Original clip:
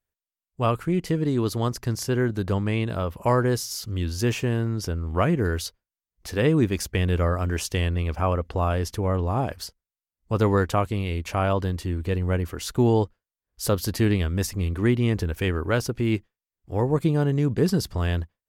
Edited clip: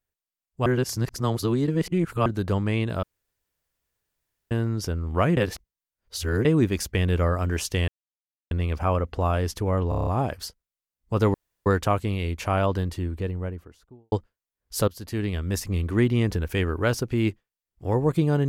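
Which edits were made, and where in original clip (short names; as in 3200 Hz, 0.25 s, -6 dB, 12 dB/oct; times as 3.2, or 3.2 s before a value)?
0.66–2.26 reverse
3.03–4.51 room tone
5.37–6.45 reverse
7.88 insert silence 0.63 s
9.26 stutter 0.03 s, 7 plays
10.53 insert room tone 0.32 s
11.58–12.99 studio fade out
13.75–14.58 fade in, from -17.5 dB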